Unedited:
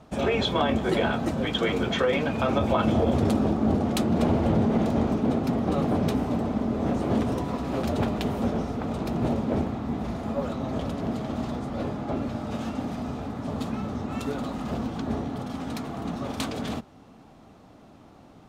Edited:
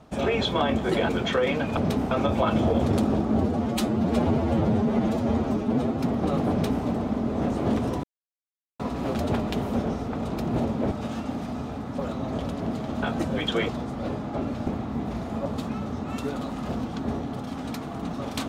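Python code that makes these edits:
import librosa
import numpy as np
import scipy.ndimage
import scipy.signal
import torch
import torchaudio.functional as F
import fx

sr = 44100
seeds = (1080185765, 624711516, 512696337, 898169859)

y = fx.edit(x, sr, fx.move(start_s=1.09, length_s=0.66, to_s=11.43),
    fx.stretch_span(start_s=3.7, length_s=1.75, factor=1.5),
    fx.duplicate(start_s=5.95, length_s=0.34, to_s=2.43),
    fx.insert_silence(at_s=7.48, length_s=0.76),
    fx.swap(start_s=9.6, length_s=0.79, other_s=12.41, other_length_s=1.07), tone=tone)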